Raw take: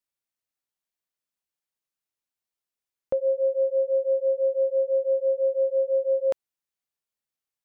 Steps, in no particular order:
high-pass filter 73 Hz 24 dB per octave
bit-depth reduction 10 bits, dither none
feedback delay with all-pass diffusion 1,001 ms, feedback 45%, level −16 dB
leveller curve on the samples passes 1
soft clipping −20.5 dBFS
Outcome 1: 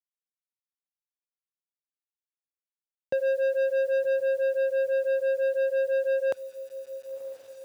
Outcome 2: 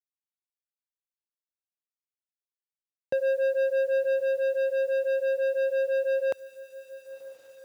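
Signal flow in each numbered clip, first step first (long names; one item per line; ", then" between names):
feedback delay with all-pass diffusion, then soft clipping, then bit-depth reduction, then leveller curve on the samples, then high-pass filter
soft clipping, then leveller curve on the samples, then feedback delay with all-pass diffusion, then bit-depth reduction, then high-pass filter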